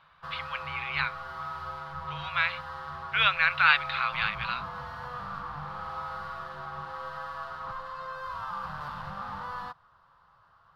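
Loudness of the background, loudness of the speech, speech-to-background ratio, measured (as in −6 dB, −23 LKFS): −38.0 LKFS, −27.0 LKFS, 11.0 dB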